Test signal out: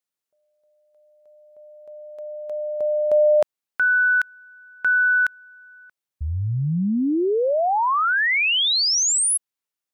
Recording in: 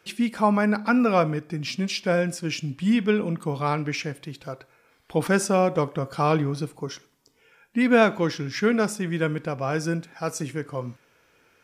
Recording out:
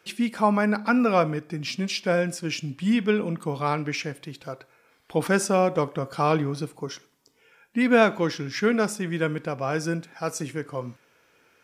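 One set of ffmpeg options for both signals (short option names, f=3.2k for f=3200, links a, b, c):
-af "lowshelf=f=81:g=-10"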